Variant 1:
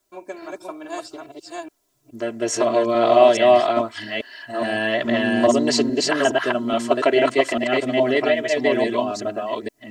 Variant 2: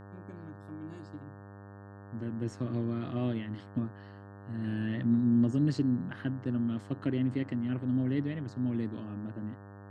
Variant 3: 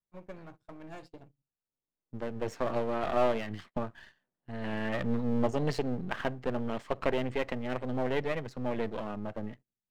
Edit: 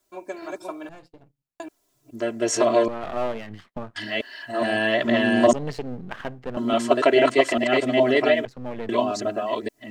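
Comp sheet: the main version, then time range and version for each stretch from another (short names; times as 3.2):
1
0.89–1.6 from 3
2.88–3.96 from 3
5.53–6.57 from 3
8.45–8.89 from 3
not used: 2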